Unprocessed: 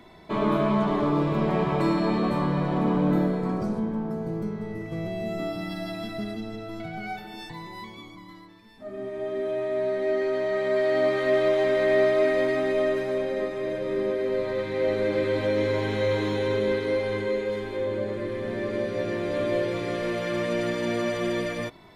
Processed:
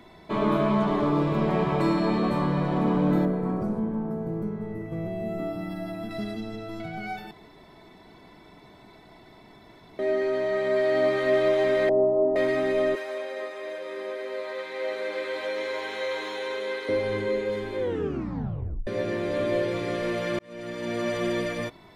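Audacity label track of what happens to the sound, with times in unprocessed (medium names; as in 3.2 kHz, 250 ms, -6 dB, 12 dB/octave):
3.250000	6.110000	peaking EQ 4.9 kHz -12.5 dB 2 oct
7.310000	9.990000	room tone
11.890000	12.360000	elliptic low-pass 920 Hz, stop band 80 dB
12.950000	16.890000	high-pass 670 Hz
17.800000	17.800000	tape stop 1.07 s
20.390000	21.150000	fade in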